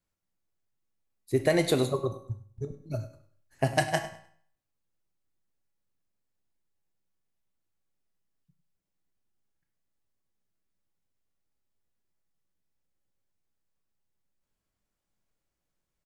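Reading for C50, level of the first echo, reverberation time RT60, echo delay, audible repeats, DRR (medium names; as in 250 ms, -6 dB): 10.0 dB, -15.0 dB, 0.55 s, 101 ms, 2, 6.0 dB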